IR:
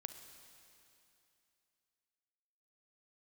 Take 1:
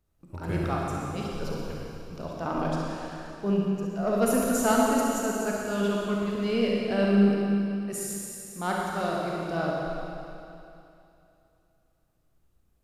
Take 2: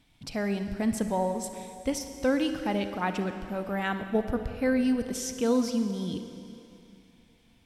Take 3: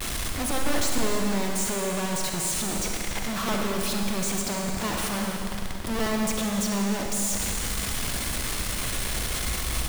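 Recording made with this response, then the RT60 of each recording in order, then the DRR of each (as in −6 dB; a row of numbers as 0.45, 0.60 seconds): 2; 2.8, 2.8, 2.8 seconds; −3.5, 8.0, 1.0 decibels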